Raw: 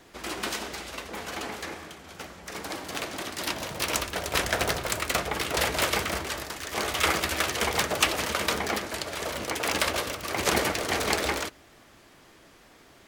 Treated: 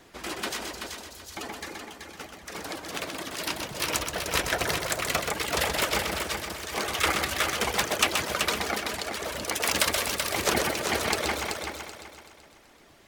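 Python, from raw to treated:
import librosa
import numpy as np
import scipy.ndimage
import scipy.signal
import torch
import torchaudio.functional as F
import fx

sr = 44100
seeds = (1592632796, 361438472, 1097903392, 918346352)

p1 = fx.dereverb_blind(x, sr, rt60_s=2.0)
p2 = fx.cheby2_bandstop(p1, sr, low_hz=240.0, high_hz=1800.0, order=4, stop_db=50, at=(0.72, 1.37))
p3 = fx.high_shelf(p2, sr, hz=4300.0, db=7.0, at=(9.43, 10.36))
y = p3 + fx.echo_heads(p3, sr, ms=127, heads='first and third', feedback_pct=47, wet_db=-6, dry=0)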